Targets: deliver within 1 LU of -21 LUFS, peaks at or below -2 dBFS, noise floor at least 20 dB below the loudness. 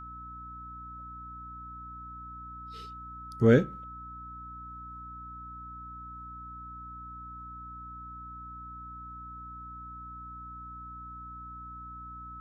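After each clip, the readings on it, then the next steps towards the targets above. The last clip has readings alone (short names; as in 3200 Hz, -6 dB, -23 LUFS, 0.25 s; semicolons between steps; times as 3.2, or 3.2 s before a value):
hum 60 Hz; harmonics up to 300 Hz; hum level -47 dBFS; steady tone 1300 Hz; tone level -42 dBFS; loudness -36.5 LUFS; peak -9.0 dBFS; loudness target -21.0 LUFS
-> de-hum 60 Hz, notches 5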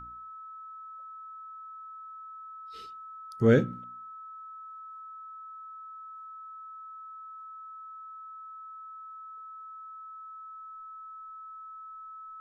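hum none; steady tone 1300 Hz; tone level -42 dBFS
-> notch 1300 Hz, Q 30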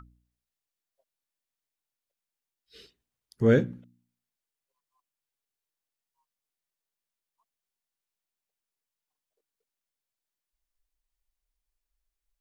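steady tone none; loudness -25.0 LUFS; peak -9.5 dBFS; loudness target -21.0 LUFS
-> gain +4 dB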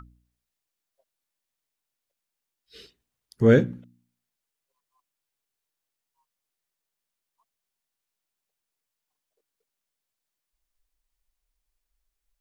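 loudness -21.0 LUFS; peak -5.5 dBFS; noise floor -85 dBFS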